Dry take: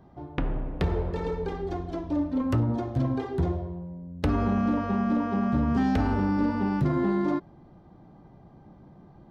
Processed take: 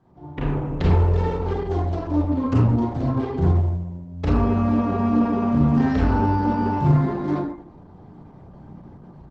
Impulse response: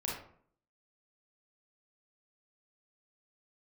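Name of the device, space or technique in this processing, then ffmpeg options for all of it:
speakerphone in a meeting room: -filter_complex "[0:a]asplit=2[link_01][link_02];[link_02]adelay=33,volume=-11dB[link_03];[link_01][link_03]amix=inputs=2:normalize=0[link_04];[1:a]atrim=start_sample=2205[link_05];[link_04][link_05]afir=irnorm=-1:irlink=0,dynaudnorm=framelen=280:gausssize=3:maxgain=8.5dB,volume=-4.5dB" -ar 48000 -c:a libopus -b:a 12k

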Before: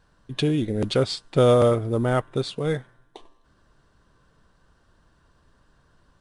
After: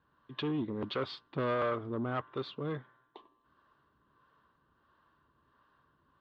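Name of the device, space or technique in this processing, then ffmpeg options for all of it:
guitar amplifier with harmonic tremolo: -filter_complex "[0:a]acrossover=split=420[link_01][link_02];[link_01]aeval=exprs='val(0)*(1-0.5/2+0.5/2*cos(2*PI*1.5*n/s))':channel_layout=same[link_03];[link_02]aeval=exprs='val(0)*(1-0.5/2-0.5/2*cos(2*PI*1.5*n/s))':channel_layout=same[link_04];[link_03][link_04]amix=inputs=2:normalize=0,asoftclip=type=tanh:threshold=-21dB,highpass=110,equalizer=frequency=110:width_type=q:width=4:gain=-6,equalizer=frequency=180:width_type=q:width=4:gain=-7,equalizer=frequency=500:width_type=q:width=4:gain=-4,equalizer=frequency=710:width_type=q:width=4:gain=-5,equalizer=frequency=1100:width_type=q:width=4:gain=8,equalizer=frequency=2300:width_type=q:width=4:gain=-4,lowpass=frequency=3500:width=0.5412,lowpass=frequency=3500:width=1.3066,volume=-4.5dB"

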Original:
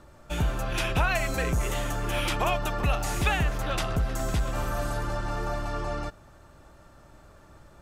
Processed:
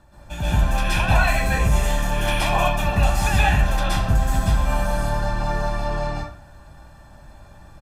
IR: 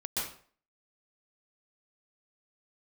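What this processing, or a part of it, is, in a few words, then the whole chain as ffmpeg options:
microphone above a desk: -filter_complex "[0:a]aecho=1:1:1.2:0.53[link_01];[1:a]atrim=start_sample=2205[link_02];[link_01][link_02]afir=irnorm=-1:irlink=0"

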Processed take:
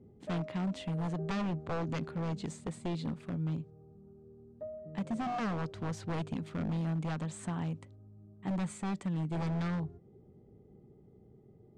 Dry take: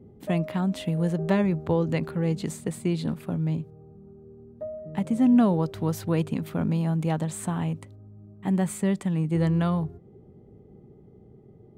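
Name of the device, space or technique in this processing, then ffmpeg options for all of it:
synthesiser wavefolder: -af "aeval=exprs='0.0891*(abs(mod(val(0)/0.0891+3,4)-2)-1)':channel_layout=same,lowpass=frequency=8000:width=0.5412,lowpass=frequency=8000:width=1.3066,volume=-7.5dB"

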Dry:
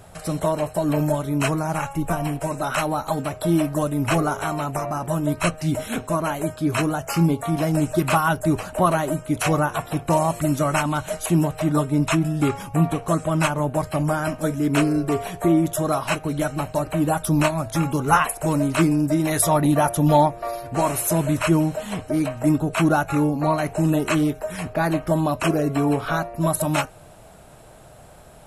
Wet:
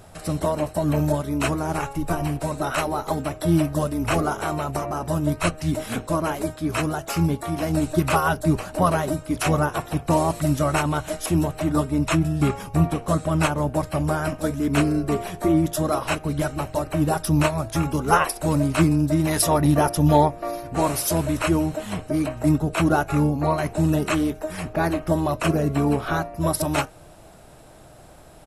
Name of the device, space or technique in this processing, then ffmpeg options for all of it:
octave pedal: -filter_complex "[0:a]asettb=1/sr,asplit=3[link_01][link_02][link_03];[link_01]atrim=end=6.564[link_04];[link_02]atrim=start=6.56:end=7.7,asetpts=PTS-STARTPTS,afade=type=in:duration=0.004:curve=qsin,afade=type=out:start_time=1.136:duration=0.004:curve=qsin,lowshelf=frequency=430:gain=-3.5[link_05];[link_03]atrim=start=7.696[link_06];[link_04][link_05]acrossfade=duration=0.004:curve1=hsin:curve2=qsin[link_07];[link_07][link_06]acrossfade=duration=0.004:curve1=qsin:curve2=hsin,asplit=2[link_08][link_09];[link_09]asetrate=22050,aresample=44100,atempo=2,volume=-7dB[link_10];[link_08][link_10]amix=inputs=2:normalize=0,volume=-1.5dB"

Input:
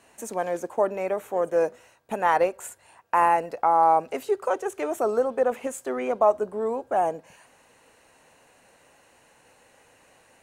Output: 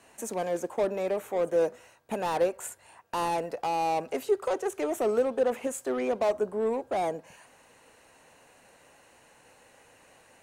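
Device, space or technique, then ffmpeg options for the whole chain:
one-band saturation: -filter_complex "[0:a]acrossover=split=540|4600[link_01][link_02][link_03];[link_02]asoftclip=type=tanh:threshold=-32dB[link_04];[link_01][link_04][link_03]amix=inputs=3:normalize=0"

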